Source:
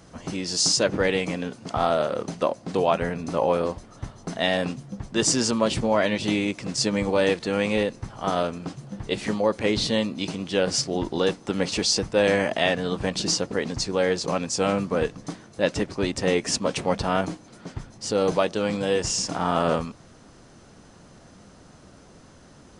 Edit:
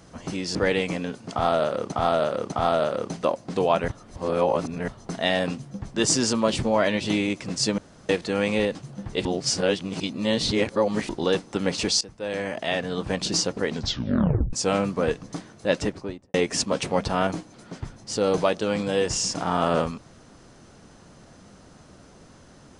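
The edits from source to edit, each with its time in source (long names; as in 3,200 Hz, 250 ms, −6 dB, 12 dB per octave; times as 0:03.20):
0:00.55–0:00.93: remove
0:01.70–0:02.30: repeat, 3 plays
0:03.06–0:04.06: reverse
0:06.96–0:07.27: fill with room tone
0:07.93–0:08.69: remove
0:09.19–0:11.03: reverse
0:11.95–0:13.15: fade in, from −19 dB
0:13.66: tape stop 0.81 s
0:15.72–0:16.28: fade out and dull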